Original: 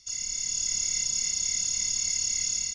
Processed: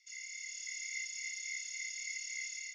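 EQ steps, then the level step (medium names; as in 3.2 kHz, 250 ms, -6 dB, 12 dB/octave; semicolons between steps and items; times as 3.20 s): band-pass filter 2.1 kHz, Q 12; differentiator; +15.5 dB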